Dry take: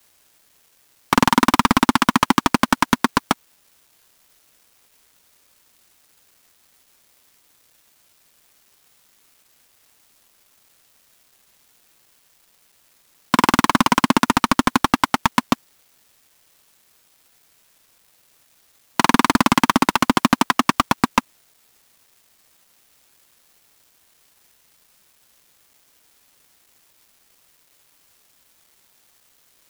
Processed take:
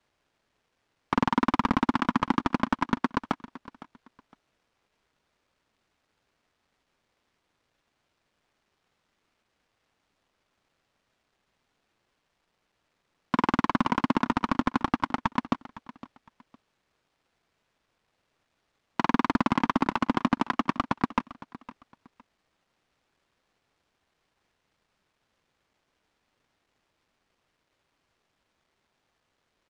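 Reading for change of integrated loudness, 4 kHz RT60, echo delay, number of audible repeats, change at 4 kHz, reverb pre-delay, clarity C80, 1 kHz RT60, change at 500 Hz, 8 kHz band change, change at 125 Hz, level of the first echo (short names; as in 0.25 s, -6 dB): -9.5 dB, none, 0.51 s, 2, -15.5 dB, none, none, none, -8.0 dB, under -20 dB, -7.5 dB, -17.5 dB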